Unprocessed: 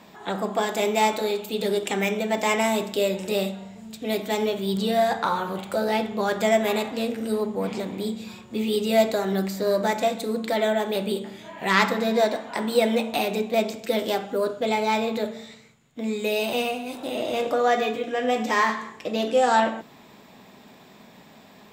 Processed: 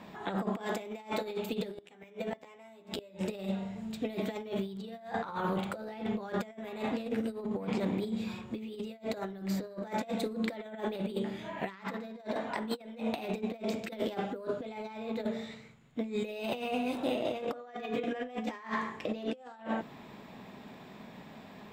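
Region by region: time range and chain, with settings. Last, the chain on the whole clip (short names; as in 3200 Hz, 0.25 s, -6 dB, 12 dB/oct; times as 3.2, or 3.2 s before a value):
1.74–3.21 flipped gate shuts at -15 dBFS, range -33 dB + doubler 12 ms -3 dB
whole clip: tone controls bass +3 dB, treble -9 dB; negative-ratio compressor -29 dBFS, ratio -0.5; gain -6 dB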